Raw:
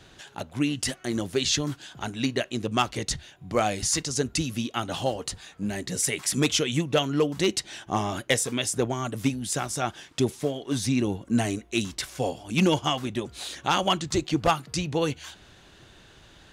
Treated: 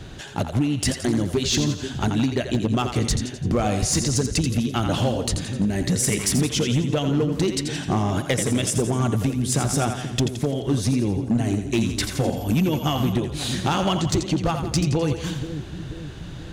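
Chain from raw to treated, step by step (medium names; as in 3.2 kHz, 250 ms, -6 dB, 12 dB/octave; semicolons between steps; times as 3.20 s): bass shelf 350 Hz +12 dB; compression 12:1, threshold -24 dBFS, peak gain reduction 15.5 dB; two-band feedback delay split 400 Hz, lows 484 ms, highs 85 ms, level -8 dB; hard clipper -21 dBFS, distortion -19 dB; 12.36–13.11 s: whistle 12 kHz -51 dBFS; trim +6.5 dB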